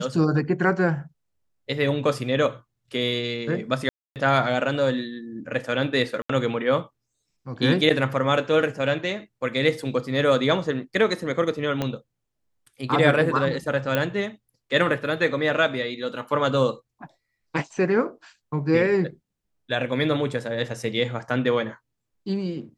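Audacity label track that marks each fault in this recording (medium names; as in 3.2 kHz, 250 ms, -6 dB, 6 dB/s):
3.890000	4.160000	dropout 268 ms
6.220000	6.290000	dropout 74 ms
11.820000	11.820000	pop -12 dBFS
13.950000	13.950000	pop -9 dBFS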